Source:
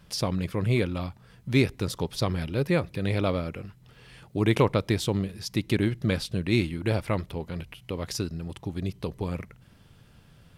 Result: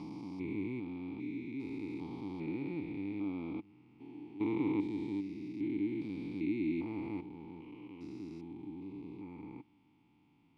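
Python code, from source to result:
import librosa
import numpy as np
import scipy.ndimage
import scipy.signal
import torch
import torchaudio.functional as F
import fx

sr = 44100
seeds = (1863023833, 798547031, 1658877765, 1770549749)

y = fx.spec_steps(x, sr, hold_ms=400)
y = fx.vowel_filter(y, sr, vowel='u')
y = fx.dynamic_eq(y, sr, hz=1400.0, q=0.7, threshold_db=-59.0, ratio=4.0, max_db=-4)
y = F.gain(torch.from_numpy(y), 4.5).numpy()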